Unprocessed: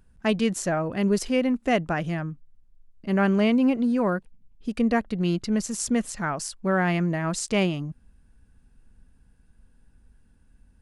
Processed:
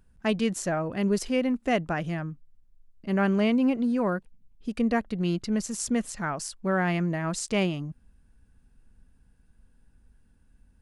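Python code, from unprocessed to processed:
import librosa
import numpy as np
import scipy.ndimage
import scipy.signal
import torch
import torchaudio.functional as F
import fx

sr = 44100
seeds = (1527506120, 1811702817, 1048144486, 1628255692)

y = x * 10.0 ** (-2.5 / 20.0)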